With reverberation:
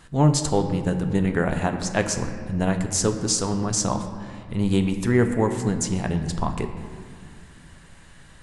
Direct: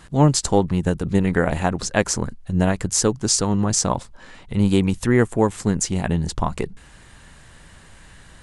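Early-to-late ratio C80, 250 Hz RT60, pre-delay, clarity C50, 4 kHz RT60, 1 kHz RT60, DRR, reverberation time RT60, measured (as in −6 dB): 9.0 dB, 3.1 s, 7 ms, 8.0 dB, 1.3 s, 2.0 s, 6.0 dB, 2.1 s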